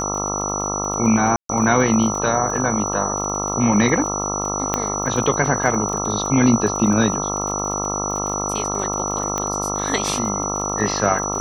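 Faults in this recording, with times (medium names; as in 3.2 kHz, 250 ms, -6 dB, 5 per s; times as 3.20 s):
buzz 50 Hz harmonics 27 -26 dBFS
crackle 35 per s -27 dBFS
whine 5.9 kHz -25 dBFS
1.36–1.49 s: dropout 133 ms
4.74 s: pop -5 dBFS
9.38 s: pop -9 dBFS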